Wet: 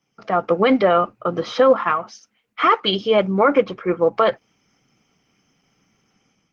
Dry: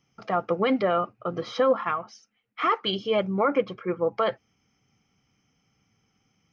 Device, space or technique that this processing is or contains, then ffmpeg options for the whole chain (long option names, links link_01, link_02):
video call: -af "highpass=150,dynaudnorm=framelen=110:gausssize=5:maxgain=8.5dB" -ar 48000 -c:a libopus -b:a 16k